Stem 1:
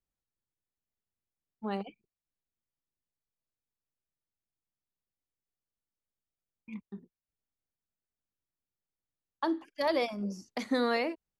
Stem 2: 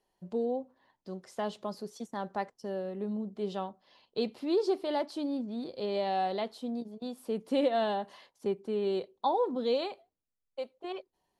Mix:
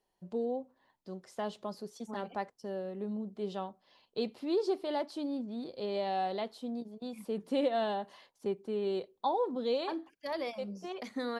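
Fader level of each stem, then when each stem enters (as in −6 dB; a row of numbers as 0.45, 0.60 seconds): −7.5, −2.5 decibels; 0.45, 0.00 seconds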